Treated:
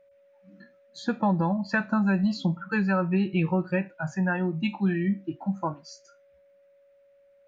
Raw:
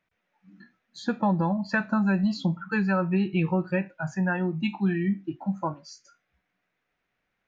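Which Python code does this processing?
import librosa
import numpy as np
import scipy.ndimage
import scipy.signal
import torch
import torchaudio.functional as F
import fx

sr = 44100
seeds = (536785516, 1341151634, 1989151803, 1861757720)

y = x + 10.0 ** (-57.0 / 20.0) * np.sin(2.0 * np.pi * 560.0 * np.arange(len(x)) / sr)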